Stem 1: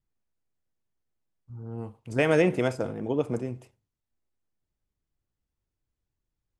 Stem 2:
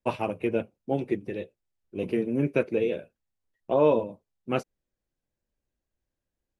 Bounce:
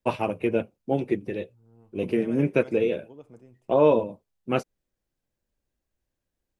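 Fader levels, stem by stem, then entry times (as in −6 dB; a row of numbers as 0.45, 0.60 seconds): −20.0, +2.5 decibels; 0.00, 0.00 seconds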